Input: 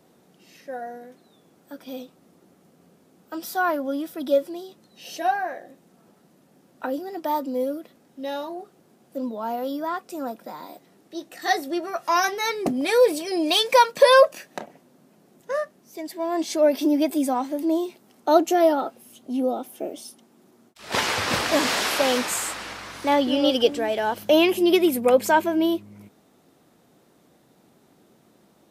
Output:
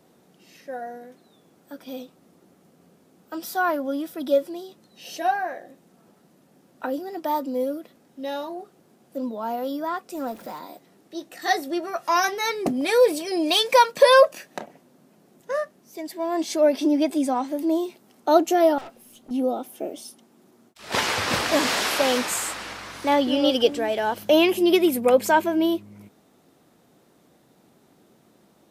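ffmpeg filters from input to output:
-filter_complex "[0:a]asettb=1/sr,asplit=3[s0][s1][s2];[s0]atrim=end=10.154[s3];[s1]atrim=start=10.15:end=10.59,asetpts=PTS-STARTPTS,afade=t=in:d=0.004:c=qsin,afade=t=out:st=0.436:d=0.004:c=qsin,aeval=exprs='val(0)+0.5*0.00668*sgn(val(0))':c=same[s4];[s2]atrim=start=10.586[s5];[s3][s4]acrossfade=d=0.004:c1=hsin:c2=qsin[s6];[s6][s5]acrossfade=d=0.004:c1=qsin:c2=hsin,asettb=1/sr,asplit=3[s7][s8][s9];[s7]atrim=end=16.714[s10];[s8]atrim=start=16.71:end=17.48,asetpts=PTS-STARTPTS,afade=t=in:d=0.004:c=qsin,afade=t=out:st=0.766:d=0.004:c=qsin,lowpass=9400[s11];[s9]atrim=start=17.476[s12];[s10][s11]acrossfade=d=0.004:c1=hsin:c2=qsin[s13];[s13][s12]acrossfade=d=0.004:c1=qsin:c2=hsin,asettb=1/sr,asplit=3[s14][s15][s16];[s14]atrim=end=18.784[s17];[s15]atrim=start=18.78:end=19.31,asetpts=PTS-STARTPTS,afade=t=in:d=0.004:c=qsin,afade=t=out:st=0.526:d=0.004:c=qsin,aeval=exprs='(tanh(79.4*val(0)+0.3)-tanh(0.3))/79.4':c=same[s18];[s16]atrim=start=19.306[s19];[s17][s18]acrossfade=d=0.004:c1=hsin:c2=qsin[s20];[s20][s19]acrossfade=d=0.004:c1=qsin:c2=hsin"

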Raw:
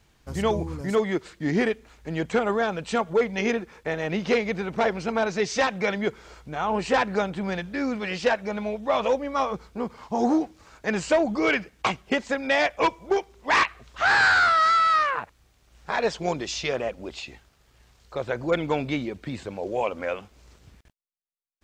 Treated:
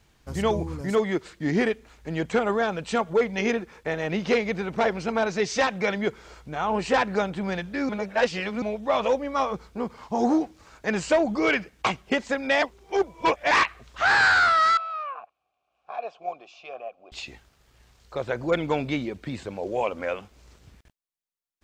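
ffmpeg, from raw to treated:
-filter_complex "[0:a]asettb=1/sr,asplit=3[s0][s1][s2];[s0]atrim=end=14.774[s3];[s1]atrim=start=14.77:end=17.12,asetpts=PTS-STARTPTS,afade=t=in:d=0.004:c=qsin,afade=t=out:st=2.346:d=0.004:c=qsin,asplit=3[s4][s5][s6];[s4]bandpass=f=730:t=q:w=8,volume=1[s7];[s5]bandpass=f=1090:t=q:w=8,volume=0.501[s8];[s6]bandpass=f=2440:t=q:w=8,volume=0.355[s9];[s7][s8][s9]amix=inputs=3:normalize=0[s10];[s2]atrim=start=17.116[s11];[s3][s10]acrossfade=d=0.004:c1=hsin:c2=qsin[s12];[s12][s11]acrossfade=d=0.004:c1=qsin:c2=hsin,asplit=5[s13][s14][s15][s16][s17];[s13]atrim=end=7.892[s18];[s14]atrim=start=7.888:end=8.622,asetpts=PTS-STARTPTS,areverse[s19];[s15]atrim=start=8.618:end=12.622[s20];[s16]atrim=start=12.618:end=13.512,asetpts=PTS-STARTPTS,areverse[s21];[s17]atrim=start=13.508[s22];[s18][s19]acrossfade=d=0.004:c1=hsin:c2=hsin[s23];[s23][s20]acrossfade=d=0.004:c1=hsin:c2=hsin[s24];[s24][s21]acrossfade=d=0.004:c1=hsin:c2=hsin[s25];[s25][s22]acrossfade=d=0.004:c1=hsin:c2=hsin"

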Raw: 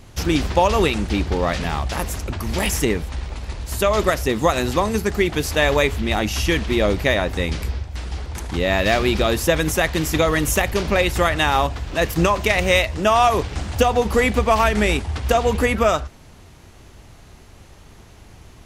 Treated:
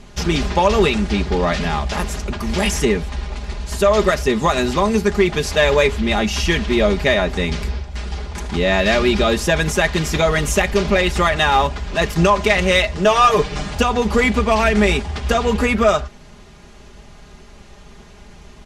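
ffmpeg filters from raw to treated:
-filter_complex "[0:a]asettb=1/sr,asplit=3[s0][s1][s2];[s0]atrim=end=13.044[s3];[s1]atrim=start=13.04:end=13.73,asetpts=PTS-STARTPTS,afade=t=in:d=0.004:c=qsin,afade=t=out:st=0.686:d=0.004:c=qsin,aecho=1:1:6.6:0.79,atrim=end_sample=30429[s4];[s2]atrim=start=13.726[s5];[s3][s4]acrossfade=d=0.004:c1=hsin:c2=qsin[s6];[s6][s5]acrossfade=d=0.004:c1=qsin:c2=hsin,lowpass=7800,aecho=1:1:4.9:0.67,acontrast=36,volume=0.668"

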